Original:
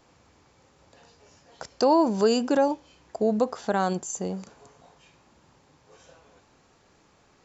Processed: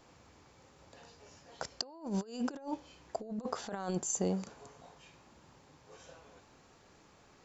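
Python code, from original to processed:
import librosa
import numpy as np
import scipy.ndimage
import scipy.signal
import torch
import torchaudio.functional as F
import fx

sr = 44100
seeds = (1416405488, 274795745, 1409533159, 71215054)

y = fx.over_compress(x, sr, threshold_db=-29.0, ratio=-0.5)
y = y * 10.0 ** (-7.0 / 20.0)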